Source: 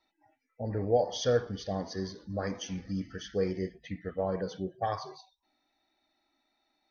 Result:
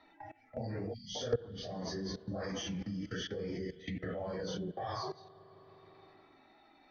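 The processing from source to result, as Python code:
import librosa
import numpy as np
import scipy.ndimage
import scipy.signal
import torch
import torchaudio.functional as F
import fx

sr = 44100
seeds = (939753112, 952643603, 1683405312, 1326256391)

y = fx.phase_scramble(x, sr, seeds[0], window_ms=100)
y = fx.low_shelf(y, sr, hz=200.0, db=4.0)
y = fx.env_lowpass(y, sr, base_hz=2500.0, full_db=-27.5)
y = fx.low_shelf(y, sr, hz=87.0, db=-8.0)
y = fx.level_steps(y, sr, step_db=23)
y = fx.env_lowpass_down(y, sr, base_hz=950.0, full_db=-30.0)
y = fx.rev_spring(y, sr, rt60_s=2.3, pass_ms=(39, 52), chirp_ms=45, drr_db=19.5)
y = fx.spec_erase(y, sr, start_s=0.93, length_s=0.22, low_hz=260.0, high_hz=1900.0)
y = fx.band_squash(y, sr, depth_pct=70)
y = y * librosa.db_to_amplitude(7.0)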